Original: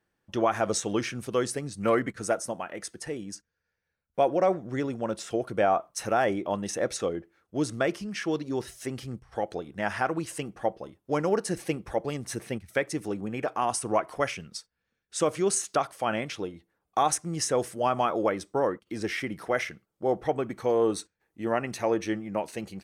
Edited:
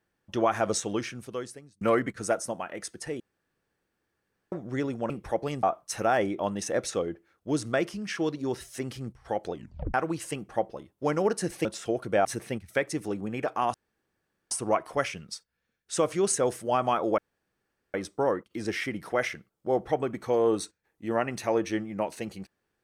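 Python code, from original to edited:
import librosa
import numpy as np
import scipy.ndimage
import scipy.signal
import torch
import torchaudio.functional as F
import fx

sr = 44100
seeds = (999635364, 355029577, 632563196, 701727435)

y = fx.edit(x, sr, fx.fade_out_span(start_s=0.7, length_s=1.11),
    fx.room_tone_fill(start_s=3.2, length_s=1.32),
    fx.swap(start_s=5.1, length_s=0.6, other_s=11.72, other_length_s=0.53),
    fx.tape_stop(start_s=9.6, length_s=0.41),
    fx.insert_room_tone(at_s=13.74, length_s=0.77),
    fx.cut(start_s=15.58, length_s=1.89),
    fx.insert_room_tone(at_s=18.3, length_s=0.76), tone=tone)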